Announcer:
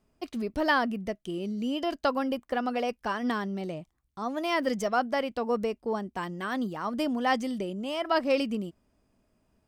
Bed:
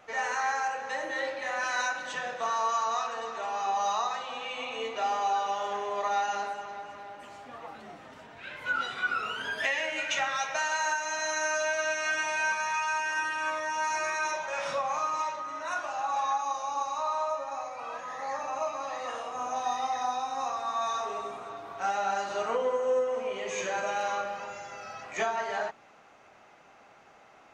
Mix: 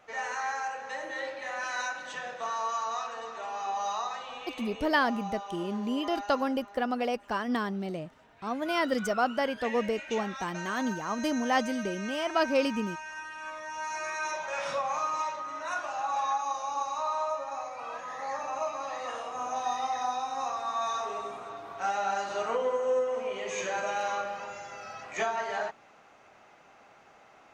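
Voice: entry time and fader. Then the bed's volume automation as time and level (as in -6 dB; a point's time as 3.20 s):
4.25 s, -0.5 dB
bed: 4.30 s -3.5 dB
4.98 s -10.5 dB
13.27 s -10.5 dB
14.51 s -0.5 dB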